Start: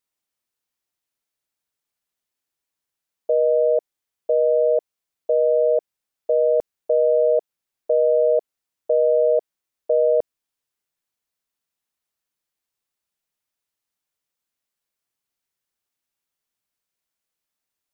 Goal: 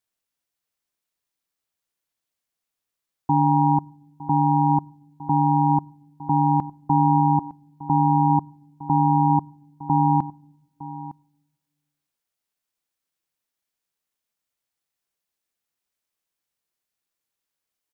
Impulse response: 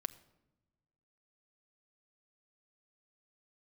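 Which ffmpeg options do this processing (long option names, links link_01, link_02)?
-filter_complex "[0:a]asplit=2[link_01][link_02];[link_02]aecho=0:1:909:0.141[link_03];[link_01][link_03]amix=inputs=2:normalize=0,aeval=exprs='val(0)*sin(2*PI*330*n/s)':channel_layout=same,asplit=2[link_04][link_05];[1:a]atrim=start_sample=2205[link_06];[link_05][link_06]afir=irnorm=-1:irlink=0,volume=-8dB[link_07];[link_04][link_07]amix=inputs=2:normalize=0"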